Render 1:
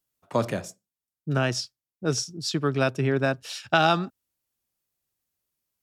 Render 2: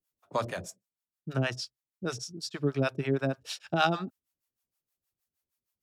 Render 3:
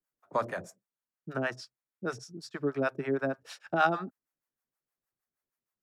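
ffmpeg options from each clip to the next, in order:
-filter_complex "[0:a]acrossover=split=570[a][b];[a]aeval=exprs='val(0)*(1-1/2+1/2*cos(2*PI*6.4*n/s))':c=same[c];[b]aeval=exprs='val(0)*(1-1/2-1/2*cos(2*PI*6.4*n/s))':c=same[d];[c][d]amix=inputs=2:normalize=0"
-filter_complex "[0:a]equalizer=f=66:w=1.3:g=-13.5,acrossover=split=200|1200|3100[a][b][c][d];[a]acompressor=threshold=-44dB:ratio=6[e];[e][b][c][d]amix=inputs=4:normalize=0,highshelf=f=2.3k:t=q:w=1.5:g=-8"

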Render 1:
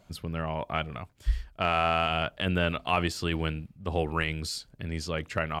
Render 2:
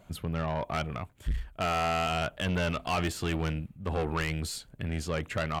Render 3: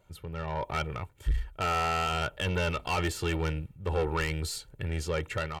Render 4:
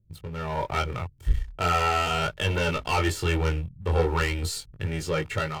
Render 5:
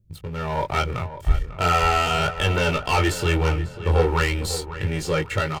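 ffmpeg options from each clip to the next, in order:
-af "equalizer=f=5k:w=2.1:g=-9.5,aeval=exprs='(tanh(25.1*val(0)+0.2)-tanh(0.2))/25.1':c=same,volume=3.5dB"
-af "dynaudnorm=f=180:g=5:m=8dB,aecho=1:1:2.2:0.6,volume=-8.5dB"
-filter_complex "[0:a]acrossover=split=250[a][b];[b]aeval=exprs='sgn(val(0))*max(abs(val(0))-0.00224,0)':c=same[c];[a][c]amix=inputs=2:normalize=0,flanger=delay=19:depth=5.1:speed=0.39,volume=8dB"
-filter_complex "[0:a]asplit=2[a][b];[b]adelay=546,lowpass=f=2.6k:p=1,volume=-12dB,asplit=2[c][d];[d]adelay=546,lowpass=f=2.6k:p=1,volume=0.37,asplit=2[e][f];[f]adelay=546,lowpass=f=2.6k:p=1,volume=0.37,asplit=2[g][h];[h]adelay=546,lowpass=f=2.6k:p=1,volume=0.37[i];[a][c][e][g][i]amix=inputs=5:normalize=0,volume=4dB"

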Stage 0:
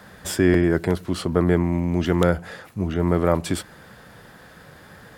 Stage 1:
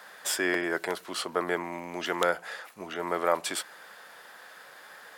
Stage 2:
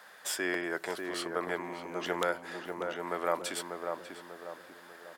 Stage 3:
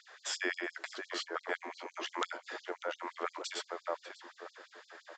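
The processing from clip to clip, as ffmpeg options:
-af "highpass=700"
-filter_complex "[0:a]asplit=2[a][b];[b]adelay=593,lowpass=f=1.2k:p=1,volume=-4dB,asplit=2[c][d];[d]adelay=593,lowpass=f=1.2k:p=1,volume=0.47,asplit=2[e][f];[f]adelay=593,lowpass=f=1.2k:p=1,volume=0.47,asplit=2[g][h];[h]adelay=593,lowpass=f=1.2k:p=1,volume=0.47,asplit=2[i][j];[j]adelay=593,lowpass=f=1.2k:p=1,volume=0.47,asplit=2[k][l];[l]adelay=593,lowpass=f=1.2k:p=1,volume=0.47[m];[a][c][e][g][i][k][m]amix=inputs=7:normalize=0,volume=-5dB"
-af "aresample=16000,aresample=44100,afftfilt=real='re*gte(b*sr/1024,240*pow(4000/240,0.5+0.5*sin(2*PI*5.8*pts/sr)))':imag='im*gte(b*sr/1024,240*pow(4000/240,0.5+0.5*sin(2*PI*5.8*pts/sr)))':win_size=1024:overlap=0.75"

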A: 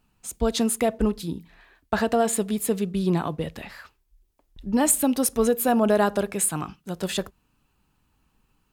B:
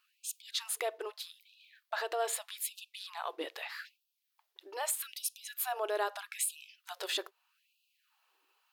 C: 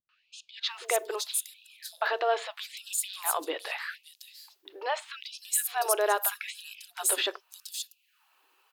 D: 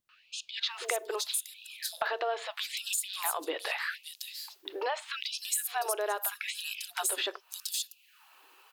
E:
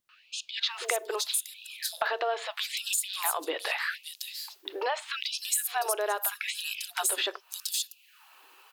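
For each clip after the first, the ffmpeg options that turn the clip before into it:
-af "equalizer=f=125:t=o:w=1:g=3,equalizer=f=500:t=o:w=1:g=-6,equalizer=f=4k:t=o:w=1:g=4,equalizer=f=8k:t=o:w=1:g=-6,alimiter=limit=-21.5dB:level=0:latency=1:release=375,afftfilt=real='re*gte(b*sr/1024,300*pow(2500/300,0.5+0.5*sin(2*PI*0.8*pts/sr)))':imag='im*gte(b*sr/1024,300*pow(2500/300,0.5+0.5*sin(2*PI*0.8*pts/sr)))':win_size=1024:overlap=0.75"
-filter_complex "[0:a]acrossover=split=280|4600[a][b][c];[b]adelay=90[d];[c]adelay=650[e];[a][d][e]amix=inputs=3:normalize=0,volume=7.5dB"
-af "acompressor=threshold=-39dB:ratio=4,volume=8dB"
-af "lowshelf=f=240:g=-5.5,volume=3dB"

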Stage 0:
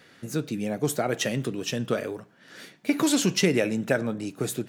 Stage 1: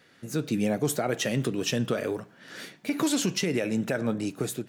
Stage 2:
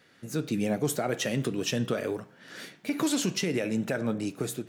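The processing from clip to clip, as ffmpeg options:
-af "dynaudnorm=f=110:g=7:m=9.5dB,alimiter=limit=-11.5dB:level=0:latency=1:release=179,volume=-5dB"
-af "flanger=delay=8.8:depth=4.9:regen=-89:speed=0.51:shape=triangular,volume=3dB"

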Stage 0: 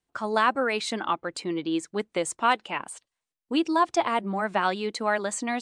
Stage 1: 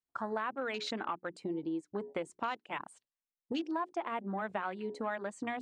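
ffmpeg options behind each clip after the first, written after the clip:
-af "bandreject=f=60:t=h:w=6,bandreject=f=120:t=h:w=6,bandreject=f=180:t=h:w=6,bandreject=f=240:t=h:w=6,bandreject=f=300:t=h:w=6,bandreject=f=360:t=h:w=6,bandreject=f=420:t=h:w=6,afwtdn=0.0158,acompressor=threshold=-35dB:ratio=4"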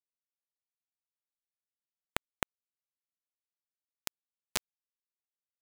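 -af "acrusher=bits=3:mix=0:aa=0.000001,volume=9dB"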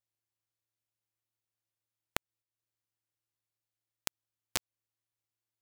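-af "acompressor=threshold=-33dB:ratio=6,aeval=exprs='max(val(0),0)':c=same,aeval=exprs='val(0)*sgn(sin(2*PI*110*n/s))':c=same,volume=5.5dB"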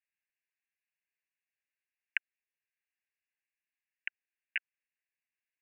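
-af "asuperpass=centerf=2100:order=20:qfactor=1.6,volume=7.5dB"

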